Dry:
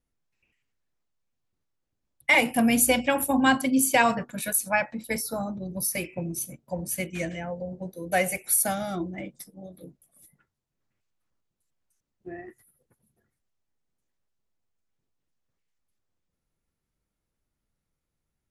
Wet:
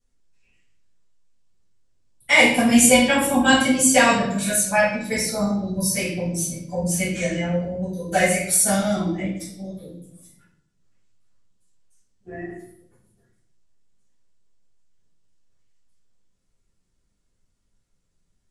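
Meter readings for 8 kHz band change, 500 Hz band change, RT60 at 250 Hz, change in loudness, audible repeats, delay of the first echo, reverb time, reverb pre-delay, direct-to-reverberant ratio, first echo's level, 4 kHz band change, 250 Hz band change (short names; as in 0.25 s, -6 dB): +7.0 dB, +7.0 dB, 1.0 s, +6.0 dB, none, none, 0.70 s, 6 ms, -12.0 dB, none, +9.0 dB, +6.5 dB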